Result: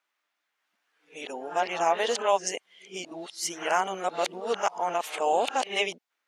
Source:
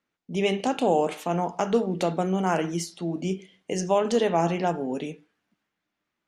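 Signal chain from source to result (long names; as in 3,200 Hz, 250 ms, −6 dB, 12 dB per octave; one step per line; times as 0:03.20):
played backwards from end to start
high-pass filter 760 Hz 12 dB per octave
level +3.5 dB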